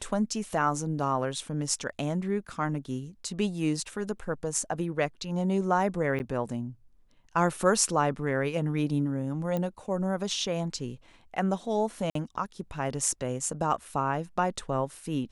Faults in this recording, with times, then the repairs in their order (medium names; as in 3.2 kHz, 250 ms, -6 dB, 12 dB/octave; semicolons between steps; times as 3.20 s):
6.19–6.20 s: dropout 9.6 ms
9.57 s: pop -19 dBFS
12.10–12.15 s: dropout 53 ms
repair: de-click; interpolate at 6.19 s, 9.6 ms; interpolate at 12.10 s, 53 ms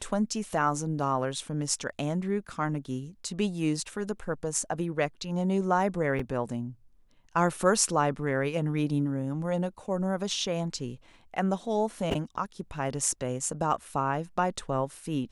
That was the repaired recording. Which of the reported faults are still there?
nothing left